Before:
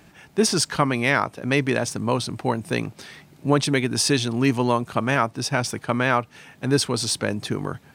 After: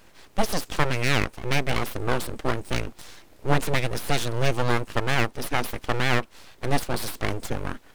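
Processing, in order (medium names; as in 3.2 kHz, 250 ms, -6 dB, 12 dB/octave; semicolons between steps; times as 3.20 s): de-esser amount 50%; full-wave rectifier; bit crusher 12-bit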